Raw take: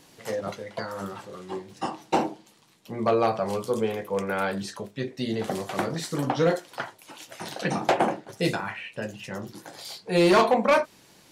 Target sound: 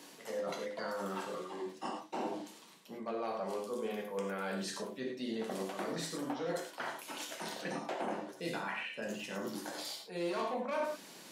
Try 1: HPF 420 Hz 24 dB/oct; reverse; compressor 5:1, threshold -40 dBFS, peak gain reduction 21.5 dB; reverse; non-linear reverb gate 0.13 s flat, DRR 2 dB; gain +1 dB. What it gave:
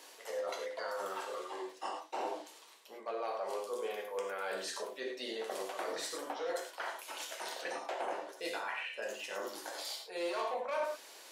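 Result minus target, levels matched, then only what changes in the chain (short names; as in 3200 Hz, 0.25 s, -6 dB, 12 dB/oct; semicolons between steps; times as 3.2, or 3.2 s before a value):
250 Hz band -9.0 dB
change: HPF 190 Hz 24 dB/oct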